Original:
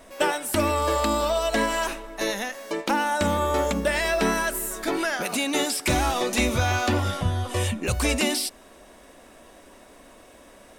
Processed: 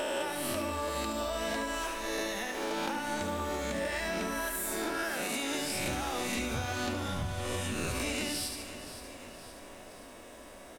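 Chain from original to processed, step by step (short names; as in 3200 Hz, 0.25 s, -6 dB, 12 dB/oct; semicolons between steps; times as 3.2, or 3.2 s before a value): spectral swells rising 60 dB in 1.07 s; feedback echo 72 ms, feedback 43%, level -8 dB; compressor 6:1, threshold -28 dBFS, peak gain reduction 12 dB; lo-fi delay 0.521 s, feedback 55%, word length 9-bit, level -12 dB; gain -3.5 dB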